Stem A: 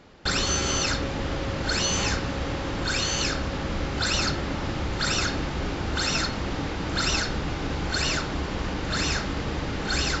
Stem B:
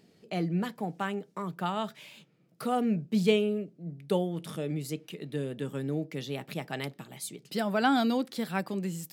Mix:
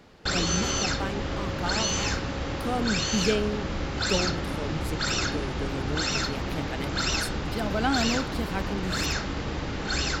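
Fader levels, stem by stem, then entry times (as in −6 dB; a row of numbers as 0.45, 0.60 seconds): −2.0, −1.0 decibels; 0.00, 0.00 seconds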